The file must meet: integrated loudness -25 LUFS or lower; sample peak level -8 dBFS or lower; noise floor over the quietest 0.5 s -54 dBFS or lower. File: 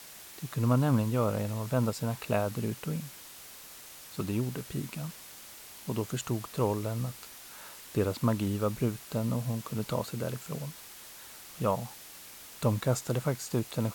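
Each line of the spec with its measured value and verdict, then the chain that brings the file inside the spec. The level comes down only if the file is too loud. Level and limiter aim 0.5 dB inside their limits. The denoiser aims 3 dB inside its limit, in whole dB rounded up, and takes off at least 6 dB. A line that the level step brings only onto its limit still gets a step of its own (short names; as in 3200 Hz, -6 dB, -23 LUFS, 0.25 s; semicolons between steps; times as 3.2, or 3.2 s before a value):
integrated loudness -32.0 LUFS: OK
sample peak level -13.5 dBFS: OK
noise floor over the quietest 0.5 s -49 dBFS: fail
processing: denoiser 8 dB, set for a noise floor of -49 dBFS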